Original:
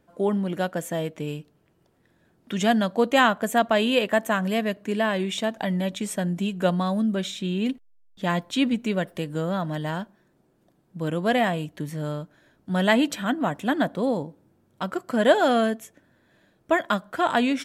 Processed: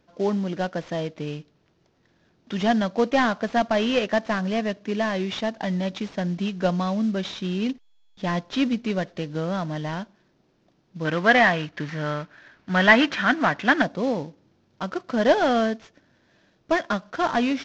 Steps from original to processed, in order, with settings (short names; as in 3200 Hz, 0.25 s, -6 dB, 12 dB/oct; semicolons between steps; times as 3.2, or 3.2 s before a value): CVSD 32 kbps; 11.05–13.82 bell 1700 Hz +12.5 dB 1.8 oct